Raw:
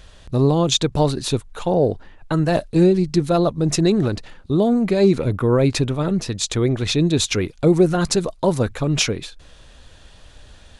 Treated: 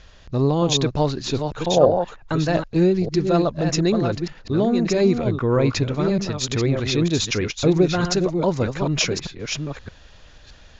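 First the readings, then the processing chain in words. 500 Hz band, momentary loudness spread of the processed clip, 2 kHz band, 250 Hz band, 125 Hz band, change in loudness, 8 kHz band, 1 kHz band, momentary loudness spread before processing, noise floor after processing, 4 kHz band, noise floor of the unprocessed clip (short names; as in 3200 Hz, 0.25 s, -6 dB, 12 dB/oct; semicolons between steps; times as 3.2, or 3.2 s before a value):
-1.0 dB, 7 LU, +0.5 dB, -2.0 dB, -2.0 dB, -2.0 dB, -2.5 dB, 0.0 dB, 8 LU, -47 dBFS, -1.5 dB, -47 dBFS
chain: reverse delay 0.618 s, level -6 dB; rippled Chebyshev low-pass 7000 Hz, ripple 3 dB; spectral gain 1.77–2.03, 500–1900 Hz +9 dB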